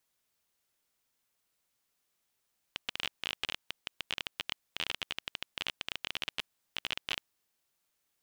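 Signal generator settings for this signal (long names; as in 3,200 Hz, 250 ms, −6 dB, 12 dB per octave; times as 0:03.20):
Geiger counter clicks 20 per second −16 dBFS 4.53 s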